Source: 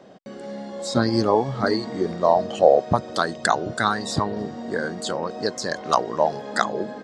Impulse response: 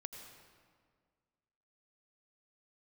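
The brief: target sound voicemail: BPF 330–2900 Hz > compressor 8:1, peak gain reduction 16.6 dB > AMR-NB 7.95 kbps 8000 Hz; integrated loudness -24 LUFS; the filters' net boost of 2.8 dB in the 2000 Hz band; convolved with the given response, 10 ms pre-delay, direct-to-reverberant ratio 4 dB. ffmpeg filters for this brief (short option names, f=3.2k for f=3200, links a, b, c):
-filter_complex "[0:a]equalizer=f=2k:t=o:g=4.5,asplit=2[a][b];[1:a]atrim=start_sample=2205,adelay=10[c];[b][c]afir=irnorm=-1:irlink=0,volume=-0.5dB[d];[a][d]amix=inputs=2:normalize=0,highpass=330,lowpass=2.9k,acompressor=threshold=-25dB:ratio=8,volume=7.5dB" -ar 8000 -c:a libopencore_amrnb -b:a 7950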